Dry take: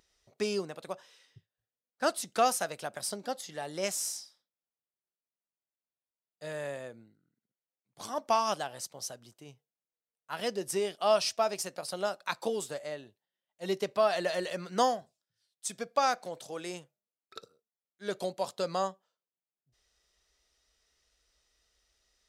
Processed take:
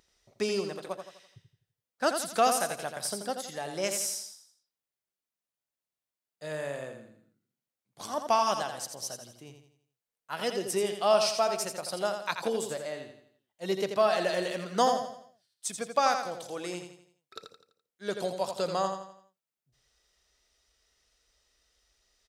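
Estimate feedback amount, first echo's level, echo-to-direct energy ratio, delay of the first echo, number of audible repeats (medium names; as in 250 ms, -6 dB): 42%, -7.0 dB, -6.0 dB, 84 ms, 4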